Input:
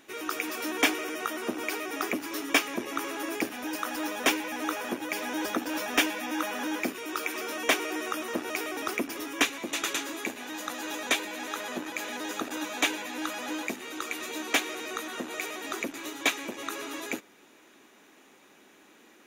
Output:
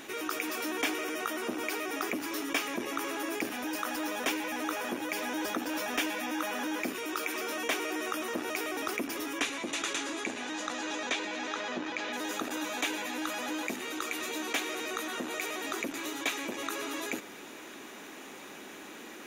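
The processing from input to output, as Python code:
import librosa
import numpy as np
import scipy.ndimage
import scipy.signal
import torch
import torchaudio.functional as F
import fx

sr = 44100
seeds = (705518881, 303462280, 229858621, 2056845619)

y = fx.lowpass(x, sr, hz=fx.line((9.38, 11000.0), (12.12, 5300.0)), slope=24, at=(9.38, 12.12), fade=0.02)
y = fx.env_flatten(y, sr, amount_pct=50)
y = y * 10.0 ** (-8.5 / 20.0)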